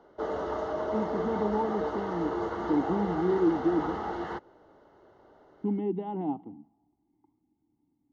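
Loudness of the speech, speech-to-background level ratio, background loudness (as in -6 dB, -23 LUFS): -31.0 LUFS, 2.5 dB, -33.5 LUFS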